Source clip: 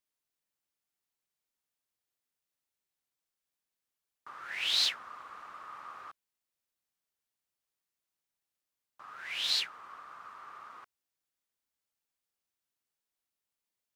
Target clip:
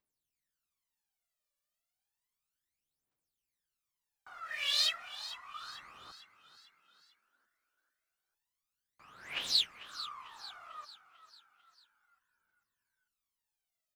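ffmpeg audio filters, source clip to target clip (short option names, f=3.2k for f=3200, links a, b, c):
-filter_complex "[0:a]asplit=3[a][b][c];[a]afade=t=out:st=4.39:d=0.02[d];[b]agate=range=-33dB:threshold=-43dB:ratio=3:detection=peak,afade=t=in:st=4.39:d=0.02,afade=t=out:st=5.6:d=0.02[e];[c]afade=t=in:st=5.6:d=0.02[f];[d][e][f]amix=inputs=3:normalize=0,aphaser=in_gain=1:out_gain=1:delay=1.8:decay=0.8:speed=0.32:type=triangular,asplit=6[g][h][i][j][k][l];[h]adelay=446,afreqshift=55,volume=-14dB[m];[i]adelay=892,afreqshift=110,volume=-20dB[n];[j]adelay=1338,afreqshift=165,volume=-26dB[o];[k]adelay=1784,afreqshift=220,volume=-32.1dB[p];[l]adelay=2230,afreqshift=275,volume=-38.1dB[q];[g][m][n][o][p][q]amix=inputs=6:normalize=0,volume=-5.5dB"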